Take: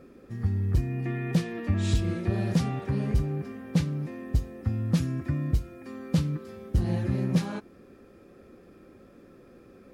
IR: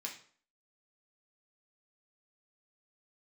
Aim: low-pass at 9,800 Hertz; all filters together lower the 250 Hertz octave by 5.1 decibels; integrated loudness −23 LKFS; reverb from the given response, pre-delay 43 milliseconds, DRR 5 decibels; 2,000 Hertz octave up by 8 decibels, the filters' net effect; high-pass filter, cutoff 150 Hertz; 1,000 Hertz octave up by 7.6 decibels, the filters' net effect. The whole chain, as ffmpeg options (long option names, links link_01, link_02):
-filter_complex "[0:a]highpass=150,lowpass=9800,equalizer=frequency=250:width_type=o:gain=-6.5,equalizer=frequency=1000:width_type=o:gain=9,equalizer=frequency=2000:width_type=o:gain=7,asplit=2[link_01][link_02];[1:a]atrim=start_sample=2205,adelay=43[link_03];[link_02][link_03]afir=irnorm=-1:irlink=0,volume=-4dB[link_04];[link_01][link_04]amix=inputs=2:normalize=0,volume=9dB"